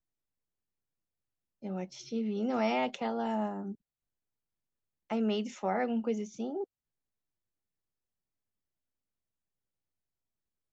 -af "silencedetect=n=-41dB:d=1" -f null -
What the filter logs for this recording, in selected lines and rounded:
silence_start: 0.00
silence_end: 1.63 | silence_duration: 1.63
silence_start: 3.73
silence_end: 5.10 | silence_duration: 1.37
silence_start: 6.64
silence_end: 10.73 | silence_duration: 4.09